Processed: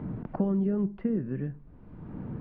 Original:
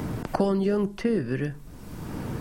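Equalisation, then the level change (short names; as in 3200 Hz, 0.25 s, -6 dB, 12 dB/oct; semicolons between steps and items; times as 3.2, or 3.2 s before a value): dynamic EQ 190 Hz, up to +8 dB, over -40 dBFS, Q 1.3; air absorption 450 m; tape spacing loss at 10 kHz 22 dB; -7.5 dB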